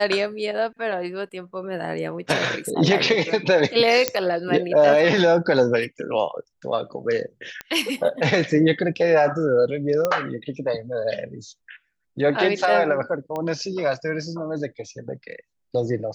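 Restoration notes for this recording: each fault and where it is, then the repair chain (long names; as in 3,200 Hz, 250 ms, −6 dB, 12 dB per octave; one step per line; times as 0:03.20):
0:04.08: click −2 dBFS
0:07.61: click −15 dBFS
0:10.05: click −9 dBFS
0:13.36: click −17 dBFS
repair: click removal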